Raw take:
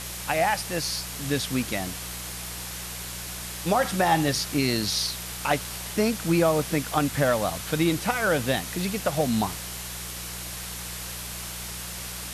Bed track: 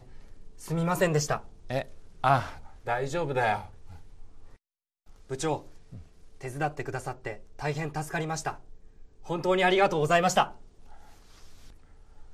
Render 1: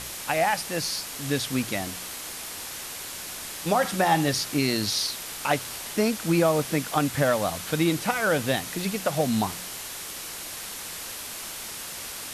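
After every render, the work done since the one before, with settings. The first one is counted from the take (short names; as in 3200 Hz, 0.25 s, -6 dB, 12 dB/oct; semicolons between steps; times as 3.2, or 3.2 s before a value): de-hum 60 Hz, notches 3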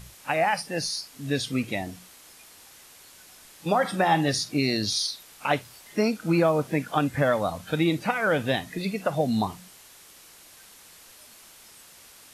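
noise print and reduce 14 dB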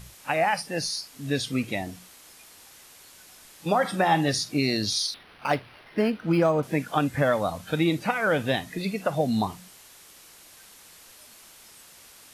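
5.14–6.63 decimation joined by straight lines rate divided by 6×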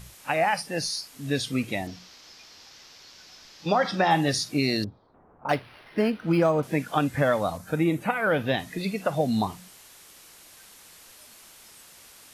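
1.87–4.11 resonant high shelf 7100 Hz -11.5 dB, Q 3; 4.84–5.49 LPF 1000 Hz 24 dB/oct; 7.56–8.58 bell 2800 Hz -> 9600 Hz -14.5 dB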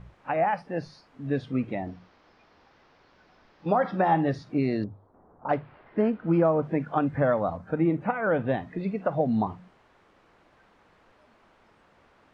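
LPF 1300 Hz 12 dB/oct; notches 50/100/150 Hz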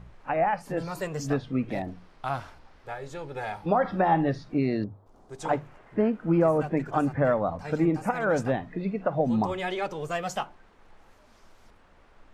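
add bed track -8 dB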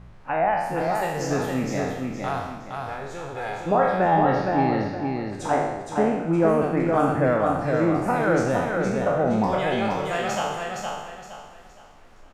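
spectral trails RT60 1.01 s; feedback echo 0.466 s, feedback 32%, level -4 dB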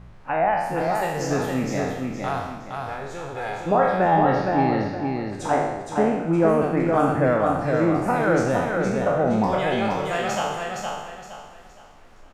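gain +1 dB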